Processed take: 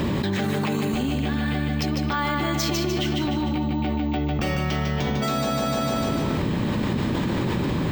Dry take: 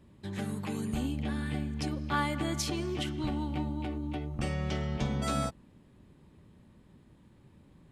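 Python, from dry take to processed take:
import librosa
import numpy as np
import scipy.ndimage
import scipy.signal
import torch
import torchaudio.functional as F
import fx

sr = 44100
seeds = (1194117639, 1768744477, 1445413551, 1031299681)

p1 = scipy.signal.sosfilt(scipy.signal.cheby1(2, 1.0, 5700.0, 'lowpass', fs=sr, output='sos'), x)
p2 = fx.low_shelf(p1, sr, hz=110.0, db=-11.5)
p3 = p2 + fx.echo_feedback(p2, sr, ms=150, feedback_pct=46, wet_db=-4.5, dry=0)
p4 = np.repeat(scipy.signal.resample_poly(p3, 1, 2), 2)[:len(p3)]
p5 = fx.env_flatten(p4, sr, amount_pct=100)
y = p5 * 10.0 ** (4.5 / 20.0)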